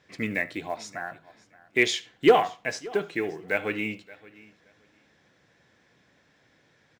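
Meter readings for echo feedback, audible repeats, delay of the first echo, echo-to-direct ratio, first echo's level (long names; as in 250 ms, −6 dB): repeats not evenly spaced, 2, 74 ms, −18.5 dB, −22.0 dB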